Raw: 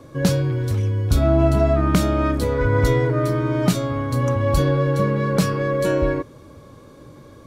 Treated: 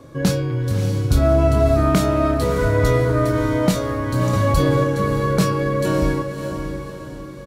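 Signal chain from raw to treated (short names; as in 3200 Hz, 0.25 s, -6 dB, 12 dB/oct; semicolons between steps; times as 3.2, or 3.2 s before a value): doubler 26 ms -8 dB; diffused feedback echo 0.601 s, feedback 44%, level -7.5 dB; 4.33–4.84 fast leveller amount 50%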